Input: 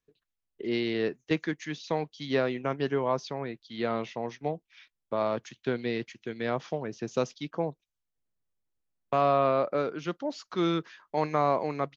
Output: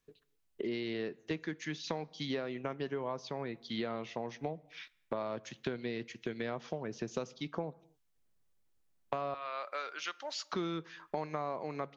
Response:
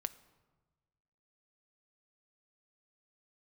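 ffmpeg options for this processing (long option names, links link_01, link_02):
-filter_complex "[0:a]asettb=1/sr,asplit=3[link_01][link_02][link_03];[link_01]atrim=end=9.344[link_04];[link_02]atrim=start=9.34:end=10.53,asetpts=PTS-STARTPTS,afade=type=in:duration=0.004:curve=qsin,afade=type=out:start_time=1.186:duration=0.004:curve=qsin,highpass=1400[link_05];[link_03]atrim=start=10.526[link_06];[link_04][link_05]acrossfade=duration=0.004:curve1=hsin:curve2=qsin[link_07];[link_07][link_06]acrossfade=duration=0.004:curve1=qsin:curve2=hsin,acompressor=threshold=-41dB:ratio=6,asplit=2[link_08][link_09];[1:a]atrim=start_sample=2205,afade=type=out:start_time=0.32:duration=0.01,atrim=end_sample=14553[link_10];[link_09][link_10]afir=irnorm=-1:irlink=0,volume=1.5dB[link_11];[link_08][link_11]amix=inputs=2:normalize=0"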